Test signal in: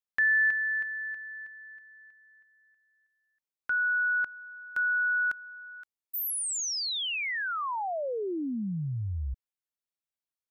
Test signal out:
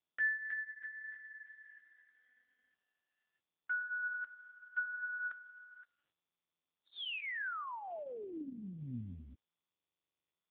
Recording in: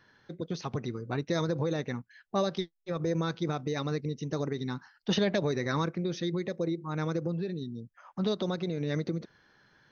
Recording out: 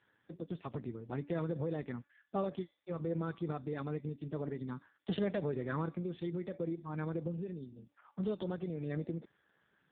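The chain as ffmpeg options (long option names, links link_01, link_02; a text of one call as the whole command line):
ffmpeg -i in.wav -af "bandreject=frequency=287.3:width_type=h:width=4,bandreject=frequency=574.6:width_type=h:width=4,bandreject=frequency=861.9:width_type=h:width=4,bandreject=frequency=1149.2:width_type=h:width=4,bandreject=frequency=1436.5:width_type=h:width=4,bandreject=frequency=1723.8:width_type=h:width=4,bandreject=frequency=2011.1:width_type=h:width=4,bandreject=frequency=2298.4:width_type=h:width=4,bandreject=frequency=2585.7:width_type=h:width=4,bandreject=frequency=2873:width_type=h:width=4,bandreject=frequency=3160.3:width_type=h:width=4,bandreject=frequency=3447.6:width_type=h:width=4,bandreject=frequency=3734.9:width_type=h:width=4,bandreject=frequency=4022.2:width_type=h:width=4,volume=-5.5dB" -ar 8000 -c:a libopencore_amrnb -b:a 5150 out.amr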